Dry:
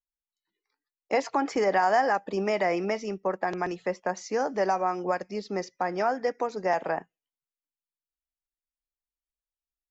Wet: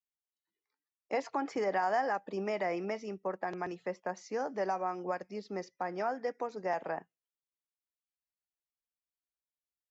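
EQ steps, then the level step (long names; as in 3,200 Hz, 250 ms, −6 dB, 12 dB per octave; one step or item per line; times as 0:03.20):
high-pass filter 56 Hz
high-shelf EQ 4,500 Hz −5 dB
−7.5 dB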